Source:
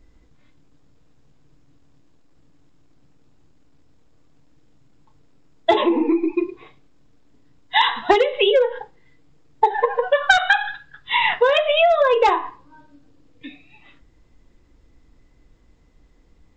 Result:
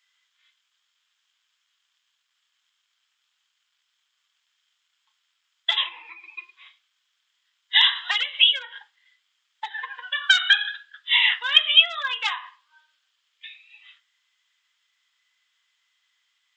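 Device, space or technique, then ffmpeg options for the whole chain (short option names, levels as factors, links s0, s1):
headphones lying on a table: -filter_complex "[0:a]highpass=f=1400:w=0.5412,highpass=f=1400:w=1.3066,equalizer=f=3200:t=o:w=0.31:g=11.5,asettb=1/sr,asplit=3[s0][s1][s2];[s0]atrim=end=9.684[s3];[s1]atrim=start=9.68:end=10.74,asetpts=PTS-STARTPTS,afade=t=in:d=0.004:c=qsin,afade=t=out:st=1.056:d=0.004:c=qsin,equalizer=f=720:t=o:w=0.92:g=-6[s4];[s2]atrim=start=10.736[s5];[s3][s4]acrossfade=d=0.004:c1=hsin:c2=qsin[s6];[s6][s5]acrossfade=d=0.004:c1=qsin:c2=hsin,volume=0.891"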